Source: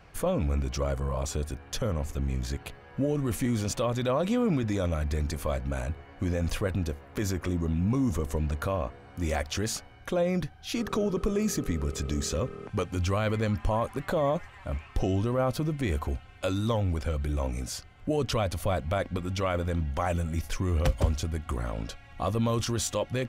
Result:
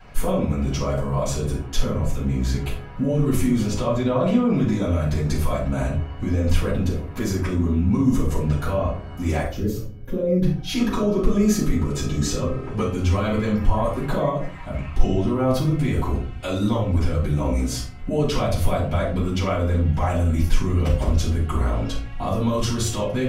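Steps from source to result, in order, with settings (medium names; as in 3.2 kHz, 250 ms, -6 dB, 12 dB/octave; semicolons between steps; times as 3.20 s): 3.67–4.49 s: treble shelf 5.8 kHz -9.5 dB; 9.45–10.43 s: time-frequency box 600–12000 Hz -16 dB; peak limiter -23 dBFS, peak gain reduction 10 dB; 14.28–14.73 s: compression, threshold -34 dBFS, peak gain reduction 6.5 dB; simulated room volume 340 m³, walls furnished, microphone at 7.6 m; trim -3.5 dB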